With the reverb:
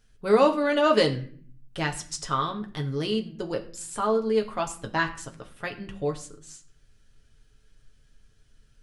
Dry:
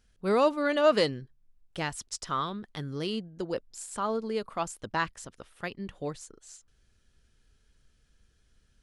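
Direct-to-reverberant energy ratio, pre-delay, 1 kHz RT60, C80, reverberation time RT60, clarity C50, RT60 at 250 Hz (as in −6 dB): 2.0 dB, 7 ms, 0.40 s, 17.0 dB, 0.45 s, 13.5 dB, 0.90 s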